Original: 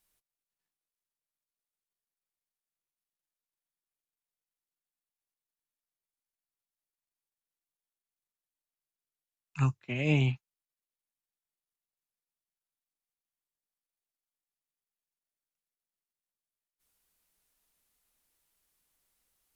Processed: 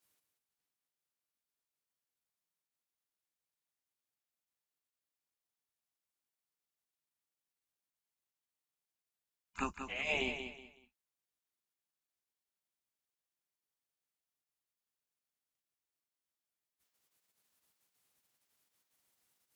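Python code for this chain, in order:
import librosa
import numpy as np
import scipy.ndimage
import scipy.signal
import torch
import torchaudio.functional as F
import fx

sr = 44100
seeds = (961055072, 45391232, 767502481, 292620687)

y = fx.low_shelf(x, sr, hz=100.0, db=6.0)
y = fx.spec_gate(y, sr, threshold_db=-15, keep='weak')
y = fx.echo_feedback(y, sr, ms=186, feedback_pct=28, wet_db=-8.0)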